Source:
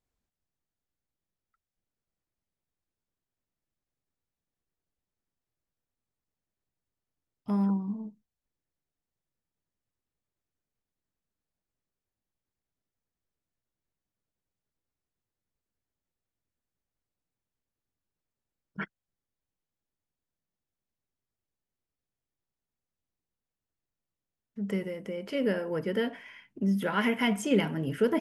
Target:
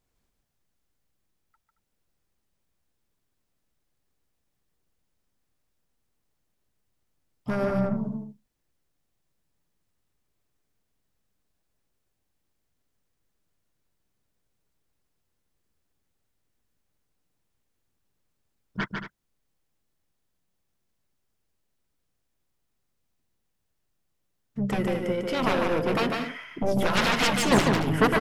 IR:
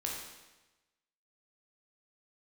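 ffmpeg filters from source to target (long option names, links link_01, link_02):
-filter_complex "[0:a]aeval=exprs='0.224*(cos(1*acos(clip(val(0)/0.224,-1,1)))-cos(1*PI/2))+0.0224*(cos(4*acos(clip(val(0)/0.224,-1,1)))-cos(4*PI/2))+0.0251*(cos(6*acos(clip(val(0)/0.224,-1,1)))-cos(6*PI/2))+0.112*(cos(7*acos(clip(val(0)/0.224,-1,1)))-cos(7*PI/2))':channel_layout=same,aecho=1:1:148.7|224.5:0.631|0.282,asplit=2[link_01][link_02];[link_02]asetrate=29433,aresample=44100,atempo=1.49831,volume=-9dB[link_03];[link_01][link_03]amix=inputs=2:normalize=0"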